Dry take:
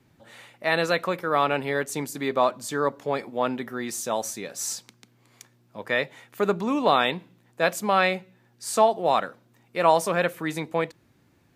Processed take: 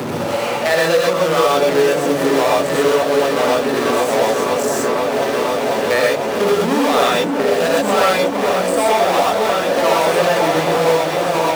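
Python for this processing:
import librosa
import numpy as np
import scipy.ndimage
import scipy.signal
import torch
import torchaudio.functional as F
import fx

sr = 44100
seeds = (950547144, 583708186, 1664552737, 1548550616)

p1 = fx.wiener(x, sr, points=25)
p2 = fx.high_shelf(p1, sr, hz=5900.0, db=9.0)
p3 = p2 + fx.echo_opening(p2, sr, ms=494, hz=400, octaves=1, feedback_pct=70, wet_db=-6, dry=0)
p4 = fx.power_curve(p3, sr, exponent=0.35)
p5 = fx.level_steps(p4, sr, step_db=15)
p6 = p4 + (p5 * 10.0 ** (-2.0 / 20.0))
p7 = fx.highpass(p6, sr, hz=280.0, slope=6)
p8 = fx.rev_gated(p7, sr, seeds[0], gate_ms=150, shape='rising', drr_db=-4.5)
p9 = fx.band_squash(p8, sr, depth_pct=70)
y = p9 * 10.0 ** (-10.0 / 20.0)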